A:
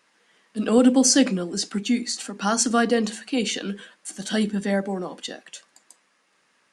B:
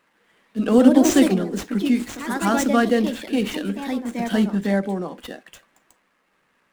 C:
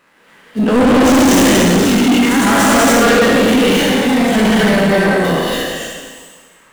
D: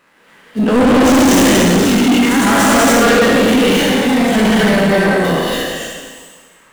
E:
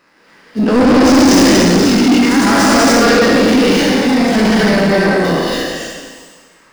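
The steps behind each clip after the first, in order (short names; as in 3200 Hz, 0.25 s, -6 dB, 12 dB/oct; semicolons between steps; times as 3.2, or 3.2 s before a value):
median filter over 9 samples; low shelf 120 Hz +9.5 dB; echoes that change speed 0.238 s, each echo +3 st, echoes 2, each echo -6 dB; gain +1 dB
spectral trails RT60 1.59 s; non-linear reverb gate 0.31 s rising, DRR -5.5 dB; soft clip -16 dBFS, distortion -4 dB; gain +8 dB
nothing audible
thirty-one-band EQ 315 Hz +5 dB, 3150 Hz -4 dB, 5000 Hz +10 dB, 8000 Hz -4 dB, 12500 Hz -10 dB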